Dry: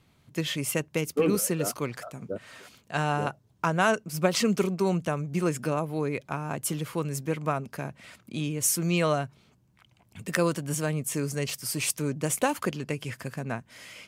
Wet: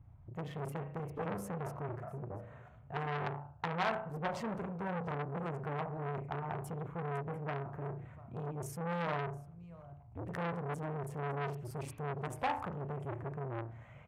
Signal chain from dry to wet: local Wiener filter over 9 samples; in parallel at -2.5 dB: compression, threshold -38 dBFS, peak gain reduction 18.5 dB; on the sum: FFT filter 110 Hz 0 dB, 190 Hz -15 dB, 340 Hz -25 dB, 740 Hz -11 dB, 3.1 kHz -29 dB; delay 697 ms -22.5 dB; on a send at -6 dB: reverberation RT60 0.55 s, pre-delay 35 ms; on the sum: dynamic bell 890 Hz, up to +5 dB, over -56 dBFS, Q 2.3; transformer saturation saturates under 1.9 kHz; trim +5.5 dB

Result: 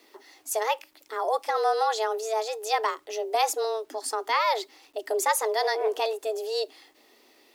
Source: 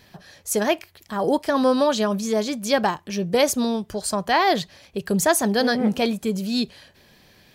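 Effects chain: frequency shift +220 Hz; bit crusher 10-bit; trim -5.5 dB

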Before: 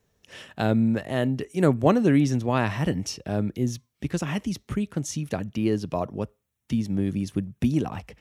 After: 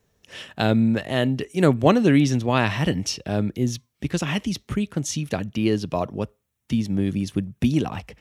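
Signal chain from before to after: dynamic bell 3.4 kHz, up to +7 dB, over -48 dBFS, Q 1; trim +2.5 dB

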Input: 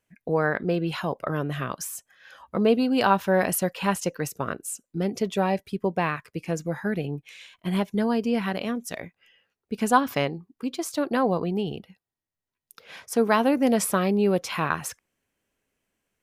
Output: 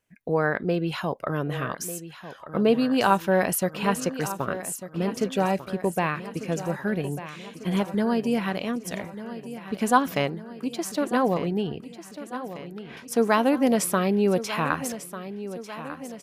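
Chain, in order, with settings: 11.67–12.97 s: tone controls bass 0 dB, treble -14 dB; feedback delay 1196 ms, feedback 58%, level -13 dB

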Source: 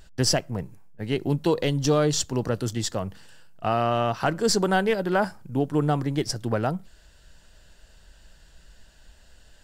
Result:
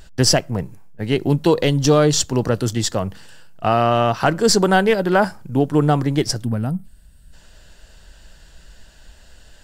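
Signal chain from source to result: time-frequency box 6.44–7.33 s, 290–7900 Hz -13 dB; trim +7 dB

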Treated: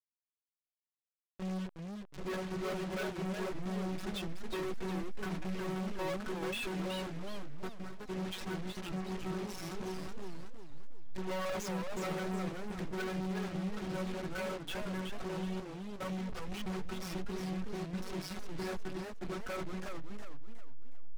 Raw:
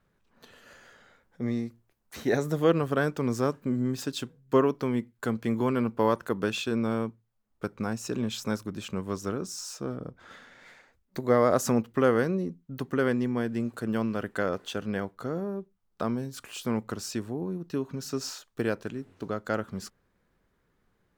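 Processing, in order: send-on-delta sampling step -31.5 dBFS; distance through air 62 m; doubling 16 ms -5 dB; robot voice 187 Hz; dynamic bell 2.3 kHz, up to +5 dB, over -47 dBFS, Q 0.87; waveshaping leveller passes 5; compression 2:1, threshold -36 dBFS, peak gain reduction 13.5 dB; saturation -34 dBFS, distortion -9 dB; peak limiter -38 dBFS, peak gain reduction 46.5 dB; modulated delay 367 ms, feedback 37%, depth 203 cents, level -6 dB; trim +2.5 dB

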